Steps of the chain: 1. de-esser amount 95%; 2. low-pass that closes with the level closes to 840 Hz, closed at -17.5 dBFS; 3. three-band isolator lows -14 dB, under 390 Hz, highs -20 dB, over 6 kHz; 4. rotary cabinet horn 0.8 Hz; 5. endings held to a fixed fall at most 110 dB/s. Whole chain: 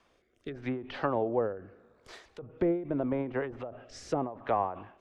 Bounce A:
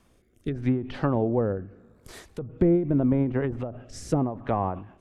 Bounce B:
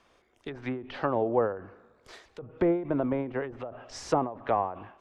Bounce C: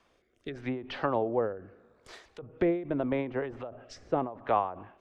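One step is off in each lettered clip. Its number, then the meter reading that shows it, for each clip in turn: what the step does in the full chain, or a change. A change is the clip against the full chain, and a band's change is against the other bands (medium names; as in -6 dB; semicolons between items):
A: 3, 125 Hz band +11.5 dB; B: 4, momentary loudness spread change -2 LU; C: 1, 125 Hz band -1.5 dB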